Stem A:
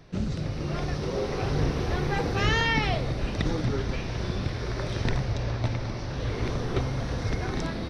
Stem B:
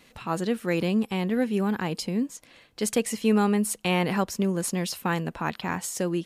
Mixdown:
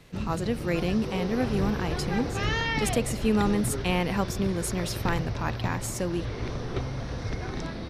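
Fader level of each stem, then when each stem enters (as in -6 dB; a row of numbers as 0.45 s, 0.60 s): -3.5 dB, -2.5 dB; 0.00 s, 0.00 s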